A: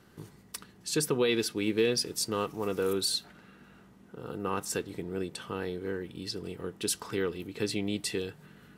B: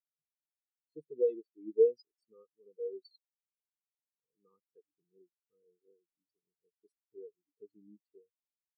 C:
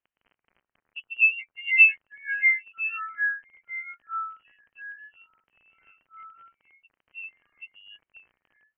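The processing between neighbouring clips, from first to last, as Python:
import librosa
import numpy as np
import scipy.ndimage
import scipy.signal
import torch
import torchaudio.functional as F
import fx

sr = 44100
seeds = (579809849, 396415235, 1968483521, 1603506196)

y1 = fx.spectral_expand(x, sr, expansion=4.0)
y2 = fx.dmg_crackle(y1, sr, seeds[0], per_s=17.0, level_db=-50.0)
y2 = fx.freq_invert(y2, sr, carrier_hz=3100)
y2 = fx.echo_pitch(y2, sr, ms=178, semitones=-4, count=3, db_per_echo=-6.0)
y2 = y2 * librosa.db_to_amplitude(8.5)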